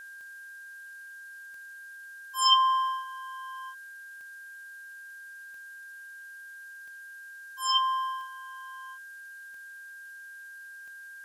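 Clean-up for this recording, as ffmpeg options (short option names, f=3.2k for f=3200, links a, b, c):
-af "adeclick=t=4,bandreject=f=1.6k:w=30,afftdn=nr=30:nf=-46"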